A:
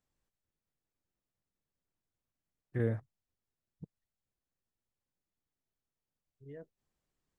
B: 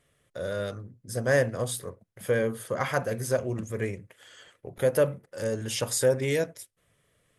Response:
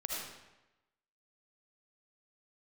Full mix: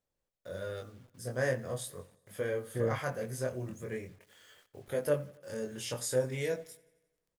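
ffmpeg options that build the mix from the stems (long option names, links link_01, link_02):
-filter_complex "[0:a]equalizer=frequency=530:width_type=o:width=0.63:gain=9.5,volume=-3dB[link_01];[1:a]flanger=delay=20:depth=3.8:speed=0.42,acrusher=bits=9:mix=0:aa=0.000001,adelay=100,volume=-5dB,asplit=2[link_02][link_03];[link_03]volume=-23dB,aecho=0:1:88|176|264|352|440|528|616|704|792:1|0.57|0.325|0.185|0.106|0.0602|0.0343|0.0195|0.0111[link_04];[link_01][link_02][link_04]amix=inputs=3:normalize=0"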